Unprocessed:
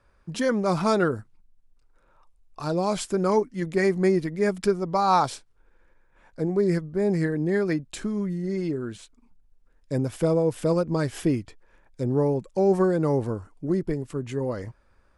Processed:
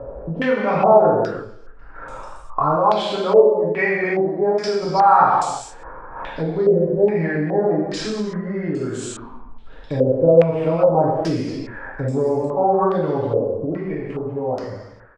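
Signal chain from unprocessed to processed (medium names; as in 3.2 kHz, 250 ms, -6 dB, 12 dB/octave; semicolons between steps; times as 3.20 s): fade out at the end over 2.83 s; speakerphone echo 300 ms, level -30 dB; upward compressor, threshold -31 dBFS; gated-style reverb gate 380 ms falling, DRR -7 dB; compression 2:1, threshold -29 dBFS, peak gain reduction 12 dB; 2.76–4.83 s: bass shelf 120 Hz -11.5 dB; wow and flutter 29 cents; peaking EQ 760 Hz +7.5 dB 1.7 oct; step-sequenced low-pass 2.4 Hz 530–7600 Hz; trim +1 dB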